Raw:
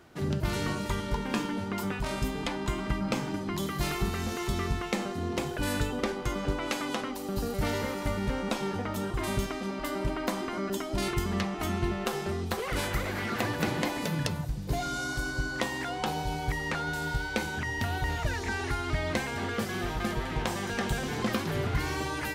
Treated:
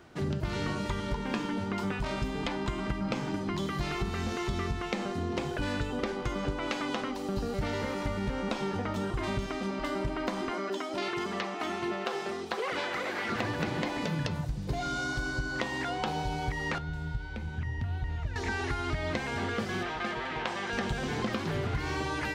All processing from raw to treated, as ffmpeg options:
-filter_complex "[0:a]asettb=1/sr,asplit=3[a][b][c];[a]atrim=end=10.514[d];[b]atrim=start=10.51:end=13.29,asetpts=PTS-STARTPTS,afade=t=in:d=0.004:c=qsin,afade=t=out:st=2.776:d=0.004:c=qsin,highpass=330,acrossover=split=5800[e][f];[f]acompressor=threshold=-51dB:ratio=4:attack=1:release=60[g];[e][g]amix=inputs=2:normalize=0,aphaser=in_gain=1:out_gain=1:delay=4.1:decay=0.23:speed=1.4:type=sinusoidal[h];[c]atrim=start=13.286[i];[d][h]acrossfade=d=0.004:c1=hsin:c2=qsin[j];[j][i]acrossfade=d=0.004:c1=qsin:c2=hsin,asettb=1/sr,asplit=3[k][l][m];[k]atrim=end=16.784[n];[l]atrim=start=16.78:end=18.36,asetpts=PTS-STARTPTS,afade=t=in:d=0.004:c=qsin,afade=t=out:st=1.576:d=0.004:c=qsin,acrossover=split=130|2200[o][p][q];[o]acompressor=threshold=-39dB:ratio=4[r];[p]acompressor=threshold=-48dB:ratio=4[s];[q]acompressor=threshold=-53dB:ratio=4[t];[r][s][t]amix=inputs=3:normalize=0,bass=f=250:g=7,treble=f=4k:g=-10[u];[m]atrim=start=18.356[v];[n][u]acrossfade=d=0.004:c1=hsin:c2=qsin[w];[w][v]acrossfade=d=0.004:c1=qsin:c2=hsin,asettb=1/sr,asplit=3[x][y][z];[x]atrim=end=19.834[aa];[y]atrim=start=19.83:end=20.73,asetpts=PTS-STARTPTS,afade=t=in:d=0.004:c=qsin,afade=t=out:st=0.896:d=0.004:c=qsin,lowpass=2.6k,aemphasis=mode=production:type=riaa[ab];[z]atrim=start=20.726[ac];[aa][ab]acrossfade=d=0.004:c1=hsin:c2=qsin[ad];[ad][ac]acrossfade=d=0.004:c1=qsin:c2=hsin,acrossover=split=6200[ae][af];[af]acompressor=threshold=-51dB:ratio=4:attack=1:release=60[ag];[ae][ag]amix=inputs=2:normalize=0,equalizer=f=13k:w=1:g=-11,acompressor=threshold=-29dB:ratio=6,volume=1.5dB"

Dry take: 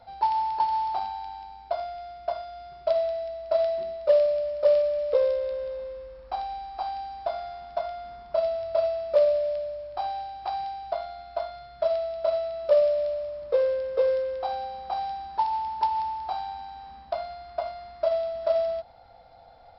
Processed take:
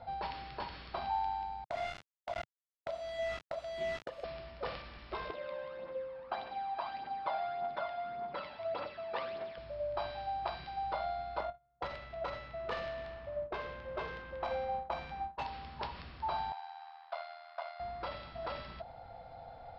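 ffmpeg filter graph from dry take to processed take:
-filter_complex "[0:a]asettb=1/sr,asplit=3[a][b][c];[a]atrim=end=1.644[d];[b]atrim=start=1.64:end=4.24,asetpts=PTS-STARTPTS,afade=t=in:d=0.004:c=qsin,afade=t=out:st=2.596:d=0.004:c=qsin,aeval=exprs='val(0)*gte(abs(val(0)),0.0224)':c=same,acompressor=threshold=-35dB:ratio=3:attack=3.2:release=140:knee=1:detection=peak[e];[c]atrim=start=4.236[f];[d][e]acrossfade=d=0.004:c1=hsin:c2=qsin[g];[g][f]acrossfade=d=0.004:c1=qsin:c2=hsin,asettb=1/sr,asplit=3[h][i][j];[h]atrim=end=5.304[k];[i]atrim=start=5.3:end=9.58,asetpts=PTS-STARTPTS,afade=t=in:d=0.004:c=qsin,afade=t=out:st=4.276:d=0.004:c=qsin,aphaser=in_gain=1:out_gain=1:delay=1.3:decay=0.48:speed=1.7:type=triangular,highpass=250,lowpass=4k[l];[j]atrim=start=9.576[m];[k][l]acrossfade=d=0.004:c1=hsin:c2=qsin[n];[n][m]acrossfade=d=0.004:c1=qsin:c2=hsin,asettb=1/sr,asplit=3[o][p][q];[o]atrim=end=11.404[r];[p]atrim=start=11.4:end=15.46,asetpts=PTS-STARTPTS,afade=t=in:d=0.004:c=qsin,afade=t=out:st=4.056:d=0.004:c=qsin,agate=range=-30dB:threshold=-39dB:ratio=16:release=100:detection=peak,adynamicsmooth=sensitivity=5:basefreq=2k[s];[q]atrim=start=15.456[t];[r][s]acrossfade=d=0.004:c1=hsin:c2=qsin[u];[u][t]acrossfade=d=0.004:c1=qsin:c2=hsin,asettb=1/sr,asplit=3[v][w][x];[v]atrim=end=16.524[y];[w]atrim=start=16.52:end=17.8,asetpts=PTS-STARTPTS,afade=t=in:d=0.004:c=qsin,afade=t=out:st=1.276:d=0.004:c=qsin,highpass=f=920:w=0.5412,highpass=f=920:w=1.3066,tremolo=f=80:d=0.75[z];[x]atrim=start=17.796[aa];[y][z]acrossfade=d=0.004:c1=hsin:c2=qsin[ab];[ab][aa]acrossfade=d=0.004:c1=qsin:c2=hsin,afftfilt=real='re*lt(hypot(re,im),0.2)':imag='im*lt(hypot(re,im),0.2)':win_size=1024:overlap=0.75,lowpass=3.2k,equalizer=f=130:w=1.1:g=5.5,volume=2dB"

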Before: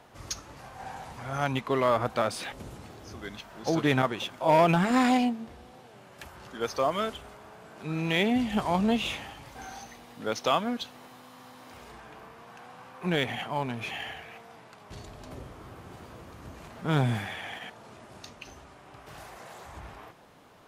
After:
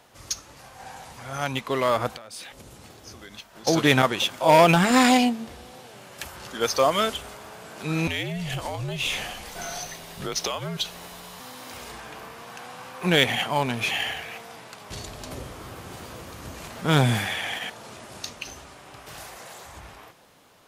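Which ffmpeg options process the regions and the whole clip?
-filter_complex "[0:a]asettb=1/sr,asplit=3[a][b][c];[a]atrim=end=2.164[d];[b]atrim=start=2.16:end=3.67,asetpts=PTS-STARTPTS,afade=t=in:d=0.004:c=qsin,afade=t=out:st=1.506:d=0.004:c=qsin,agate=range=-33dB:threshold=-42dB:ratio=3:release=100:detection=peak,acompressor=threshold=-46dB:ratio=5:attack=3.2:release=140:knee=1:detection=peak[e];[c]atrim=start=3.666[f];[d][e]acrossfade=d=0.004:c1=hsin:c2=qsin[g];[g][f]acrossfade=d=0.004:c1=qsin:c2=hsin,asettb=1/sr,asplit=3[h][i][j];[h]atrim=end=8.074[k];[i]atrim=start=8.07:end=11.4,asetpts=PTS-STARTPTS,afade=t=in:d=0.004:c=qsin,afade=t=out:st=3.326:d=0.004:c=qsin,afreqshift=-74,acompressor=threshold=-33dB:ratio=8:attack=3.2:release=140:knee=1:detection=peak[l];[j]atrim=start=11.396[m];[k][l]acrossfade=d=0.004:c1=hsin:c2=qsin[n];[n][m]acrossfade=d=0.004:c1=qsin:c2=hsin,equalizer=f=520:t=o:w=0.24:g=3,dynaudnorm=f=630:g=7:m=8.5dB,highshelf=f=2.6k:g=10.5,volume=-3dB"

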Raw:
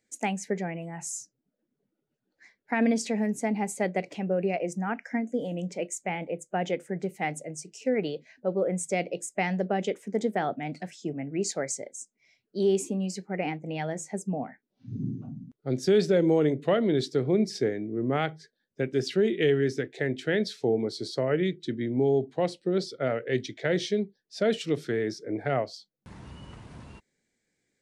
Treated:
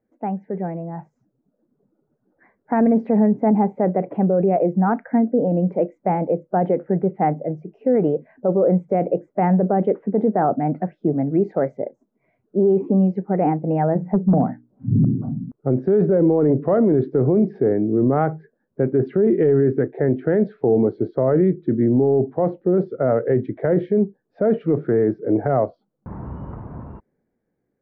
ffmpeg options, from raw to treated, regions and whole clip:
-filter_complex "[0:a]asettb=1/sr,asplit=3[a][b][c];[a]atrim=end=13.954[d];[b]atrim=start=13.95:end=15.05,asetpts=PTS-STARTPTS,afade=t=in:d=0.004:c=qsin,afade=t=out:st=1.096:d=0.004:c=qsin,asoftclip=type=hard:threshold=-25dB,equalizer=f=140:t=o:w=1.8:g=9,bandreject=f=60:t=h:w=6,bandreject=f=120:t=h:w=6,bandreject=f=180:t=h:w=6,bandreject=f=240:t=h:w=6,bandreject=f=300:t=h:w=6[e];[c]atrim=start=15.046[f];[d][e]acrossfade=d=0.004:c1=hsin:c2=qsin[g];[g][f]acrossfade=d=0.004:c1=qsin:c2=hsin,lowpass=f=1.2k:w=0.5412,lowpass=f=1.2k:w=1.3066,alimiter=limit=-23dB:level=0:latency=1:release=14,dynaudnorm=f=200:g=13:m=7.5dB,volume=6dB"

